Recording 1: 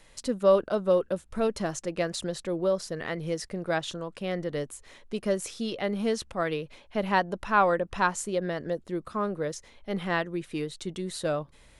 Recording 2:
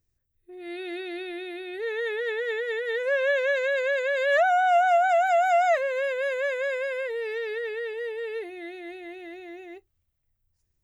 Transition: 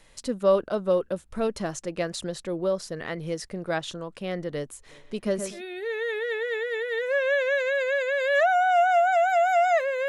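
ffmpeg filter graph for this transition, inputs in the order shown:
-filter_complex "[0:a]asplit=3[a][b][c];[a]afade=t=out:st=4.88:d=0.02[d];[b]asplit=2[e][f];[f]adelay=123,lowpass=f=2.7k:p=1,volume=-8dB,asplit=2[g][h];[h]adelay=123,lowpass=f=2.7k:p=1,volume=0.39,asplit=2[i][j];[j]adelay=123,lowpass=f=2.7k:p=1,volume=0.39,asplit=2[k][l];[l]adelay=123,lowpass=f=2.7k:p=1,volume=0.39[m];[e][g][i][k][m]amix=inputs=5:normalize=0,afade=t=in:st=4.88:d=0.02,afade=t=out:st=5.62:d=0.02[n];[c]afade=t=in:st=5.62:d=0.02[o];[d][n][o]amix=inputs=3:normalize=0,apad=whole_dur=10.08,atrim=end=10.08,atrim=end=5.62,asetpts=PTS-STARTPTS[p];[1:a]atrim=start=1.47:end=6.05,asetpts=PTS-STARTPTS[q];[p][q]acrossfade=d=0.12:c1=tri:c2=tri"

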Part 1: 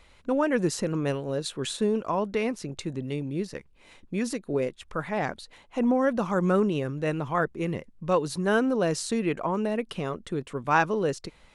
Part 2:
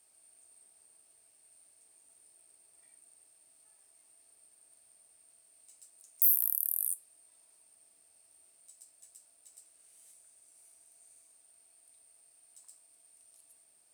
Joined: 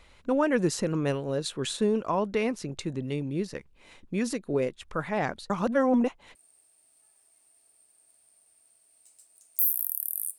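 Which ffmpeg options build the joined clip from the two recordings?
-filter_complex "[0:a]apad=whole_dur=10.38,atrim=end=10.38,asplit=2[a][b];[a]atrim=end=5.502[c];[b]atrim=start=5.498:end=6.352,asetpts=PTS-STARTPTS,areverse[d];[1:a]atrim=start=2.978:end=7.01[e];[c][d]acrossfade=d=0.004:c1=hsin:c2=hsin[f];[f][e]acrossfade=d=0.004:c1=hsin:c2=hsin"

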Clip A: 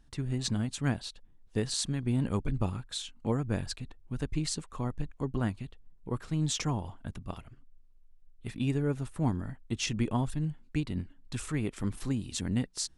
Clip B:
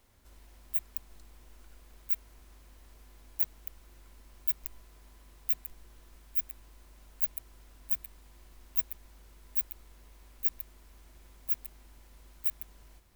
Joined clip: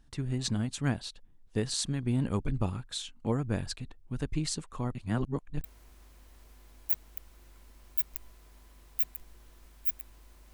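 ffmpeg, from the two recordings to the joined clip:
-filter_complex "[0:a]apad=whole_dur=10.53,atrim=end=10.53,asplit=2[a][b];[a]atrim=end=4.952[c];[b]atrim=start=4.948:end=5.642,asetpts=PTS-STARTPTS,areverse[d];[1:a]atrim=start=2.138:end=7.03[e];[c][d]acrossfade=d=0.004:c1=hsin:c2=hsin[f];[f][e]acrossfade=d=0.004:c1=hsin:c2=hsin"

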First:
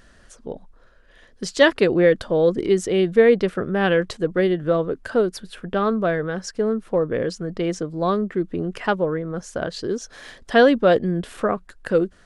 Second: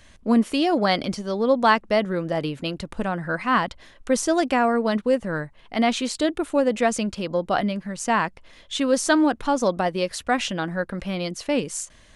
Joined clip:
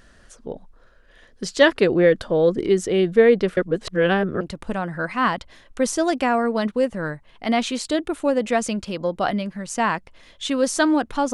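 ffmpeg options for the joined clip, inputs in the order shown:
-filter_complex "[0:a]apad=whole_dur=11.33,atrim=end=11.33,asplit=2[a][b];[a]atrim=end=3.572[c];[b]atrim=start=3.568:end=4.412,asetpts=PTS-STARTPTS,areverse[d];[1:a]atrim=start=2.708:end=9.63[e];[c][d]acrossfade=d=0.004:c1=hsin:c2=hsin[f];[f][e]acrossfade=d=0.004:c1=hsin:c2=hsin"

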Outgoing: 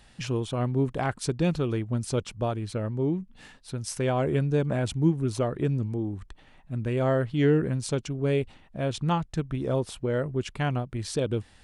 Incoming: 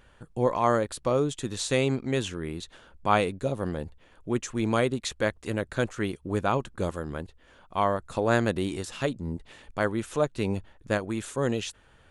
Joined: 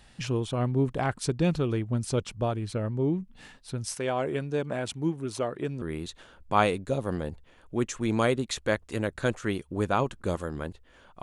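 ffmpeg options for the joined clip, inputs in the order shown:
-filter_complex "[0:a]asettb=1/sr,asplit=3[a][b][c];[a]atrim=end=3.944[d];[b]atrim=start=3.94:end=5.82,asetpts=PTS-STARTPTS,afade=t=in:d=0.004:c=qsin,afade=t=out:st=1.876:d=0.004:c=qsin,highpass=f=400:p=1[e];[c]atrim=start=5.816[f];[d][e]acrossfade=d=0.004:c1=hsin:c2=qsin[g];[g][f]acrossfade=d=0.004:c1=qsin:c2=hsin,apad=whole_dur=11.22,atrim=end=11.22,atrim=end=5.822[h];[1:a]atrim=start=2.358:end=7.76[i];[h][i]acrossfade=d=0.004:c1=hsin:c2=hsin"

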